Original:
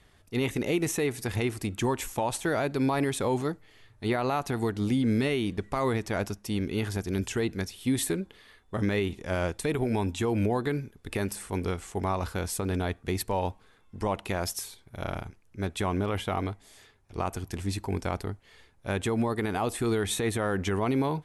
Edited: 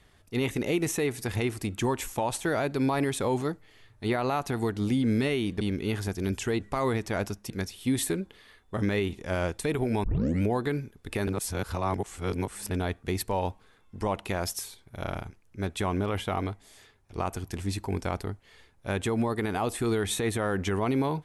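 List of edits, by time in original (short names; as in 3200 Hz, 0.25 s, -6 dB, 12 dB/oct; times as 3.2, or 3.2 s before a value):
5.61–6.5 move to 7.5
10.04 tape start 0.38 s
11.27–12.71 reverse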